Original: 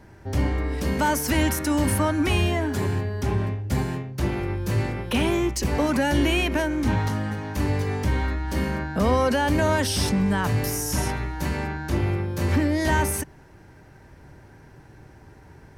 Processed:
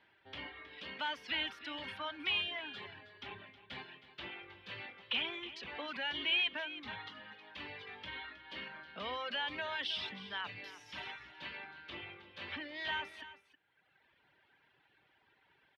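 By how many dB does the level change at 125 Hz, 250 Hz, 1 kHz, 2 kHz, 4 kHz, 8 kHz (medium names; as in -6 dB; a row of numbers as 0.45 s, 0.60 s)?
-36.5 dB, -28.0 dB, -17.0 dB, -9.5 dB, -4.5 dB, under -35 dB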